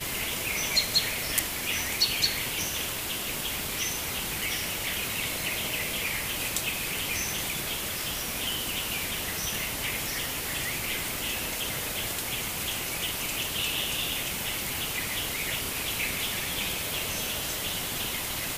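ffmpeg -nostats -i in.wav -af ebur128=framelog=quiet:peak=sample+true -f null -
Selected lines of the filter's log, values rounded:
Integrated loudness:
  I:         -28.3 LUFS
  Threshold: -38.3 LUFS
Loudness range:
  LRA:         2.5 LU
  Threshold: -48.5 LUFS
  LRA low:   -29.2 LUFS
  LRA high:  -26.8 LUFS
Sample peak:
  Peak:       -3.0 dBFS
True peak:
  Peak:       -2.8 dBFS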